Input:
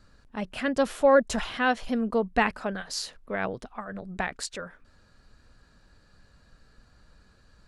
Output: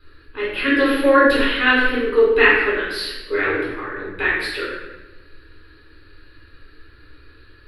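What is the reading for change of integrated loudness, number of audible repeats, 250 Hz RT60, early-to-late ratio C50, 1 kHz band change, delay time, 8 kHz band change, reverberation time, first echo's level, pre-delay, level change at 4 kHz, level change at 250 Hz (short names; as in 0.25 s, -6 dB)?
+10.0 dB, none, 1.5 s, 0.0 dB, +6.0 dB, none, -4.5 dB, 1.1 s, none, 7 ms, +11.5 dB, +8.0 dB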